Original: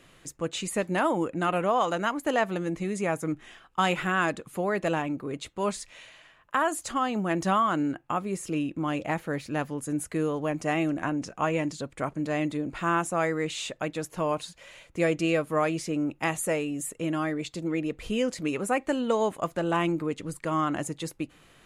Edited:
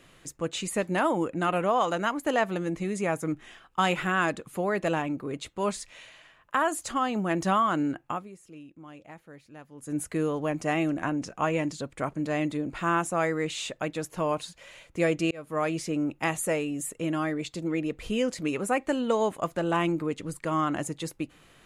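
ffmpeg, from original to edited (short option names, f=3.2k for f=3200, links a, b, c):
-filter_complex "[0:a]asplit=4[a][b][c][d];[a]atrim=end=8.38,asetpts=PTS-STARTPTS,afade=t=out:st=8.08:d=0.3:c=qua:silence=0.133352[e];[b]atrim=start=8.38:end=9.67,asetpts=PTS-STARTPTS,volume=-17.5dB[f];[c]atrim=start=9.67:end=15.31,asetpts=PTS-STARTPTS,afade=t=in:d=0.3:c=qua:silence=0.133352,afade=t=out:st=5.636:d=0.004:c=hsin[g];[d]atrim=start=15.31,asetpts=PTS-STARTPTS,afade=t=in:d=0.56:c=qsin[h];[e][f][g][h]concat=n=4:v=0:a=1"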